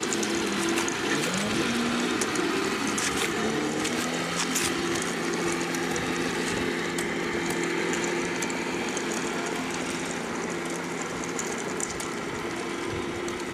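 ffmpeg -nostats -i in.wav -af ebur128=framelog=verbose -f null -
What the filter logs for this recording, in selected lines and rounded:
Integrated loudness:
  I:         -27.7 LUFS
  Threshold: -37.7 LUFS
Loudness range:
  LRA:         4.5 LU
  Threshold: -47.7 LUFS
  LRA low:   -30.5 LUFS
  LRA high:  -26.0 LUFS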